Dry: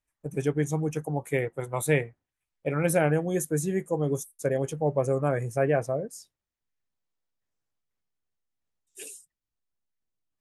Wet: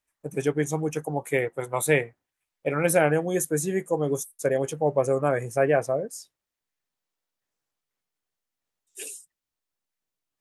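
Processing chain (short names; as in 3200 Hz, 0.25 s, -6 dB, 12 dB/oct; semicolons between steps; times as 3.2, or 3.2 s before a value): low shelf 180 Hz -11.5 dB; gain +4.5 dB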